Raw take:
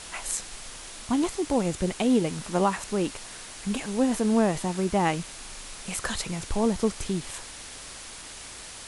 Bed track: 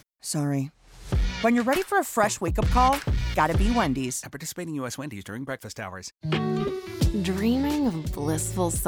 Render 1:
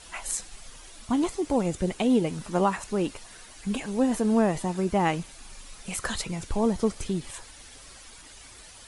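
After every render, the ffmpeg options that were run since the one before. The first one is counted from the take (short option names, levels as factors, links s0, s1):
-af "afftdn=nr=10:nf=-42"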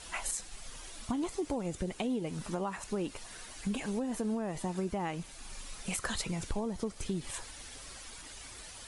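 -af "alimiter=limit=0.112:level=0:latency=1:release=486,acompressor=threshold=0.0282:ratio=4"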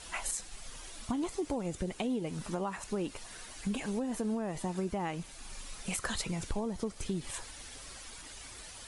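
-af anull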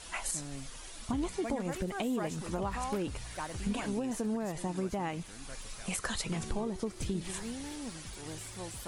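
-filter_complex "[1:a]volume=0.126[s0];[0:a][s0]amix=inputs=2:normalize=0"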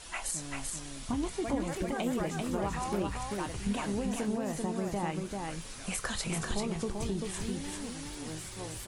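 -filter_complex "[0:a]asplit=2[s0][s1];[s1]adelay=25,volume=0.251[s2];[s0][s2]amix=inputs=2:normalize=0,aecho=1:1:390:0.668"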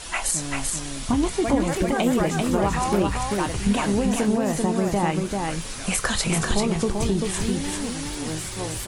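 -af "volume=3.55"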